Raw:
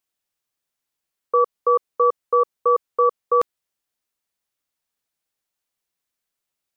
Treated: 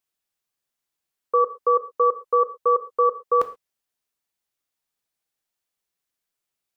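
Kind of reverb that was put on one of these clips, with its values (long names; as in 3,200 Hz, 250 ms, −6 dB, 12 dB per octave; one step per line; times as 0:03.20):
reverb whose tail is shaped and stops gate 150 ms falling, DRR 9 dB
level −2 dB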